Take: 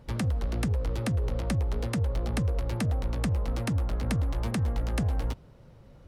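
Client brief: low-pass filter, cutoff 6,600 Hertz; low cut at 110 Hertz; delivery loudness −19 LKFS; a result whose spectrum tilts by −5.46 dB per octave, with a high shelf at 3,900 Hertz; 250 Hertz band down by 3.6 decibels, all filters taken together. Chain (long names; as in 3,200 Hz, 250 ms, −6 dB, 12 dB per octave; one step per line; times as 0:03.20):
high-pass filter 110 Hz
low-pass filter 6,600 Hz
parametric band 250 Hz −4.5 dB
high-shelf EQ 3,900 Hz +7 dB
level +15.5 dB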